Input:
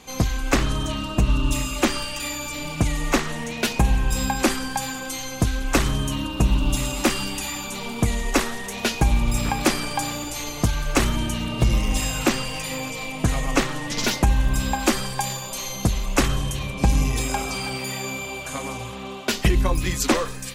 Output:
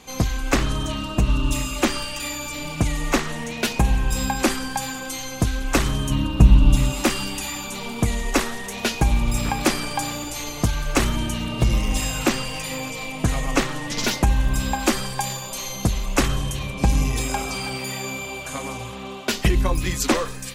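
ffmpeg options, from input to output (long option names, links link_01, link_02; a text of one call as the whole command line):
ffmpeg -i in.wav -filter_complex "[0:a]asettb=1/sr,asplit=3[link_01][link_02][link_03];[link_01]atrim=end=6.104[link_04];[link_02]atrim=start=6.1:end=6.92,asetpts=PTS-STARTPTS,afade=type=in:duration=0.004:curve=qsin,afade=type=out:start_time=0.816:duration=0.004:curve=qsin,bass=frequency=250:gain=8,treble=frequency=4000:gain=-4[link_05];[link_03]atrim=start=6.916[link_06];[link_04][link_05]acrossfade=duration=0.004:curve1=hsin:curve2=qsin[link_07];[link_07][link_06]acrossfade=duration=0.004:curve1=qsin:curve2=hsin" out.wav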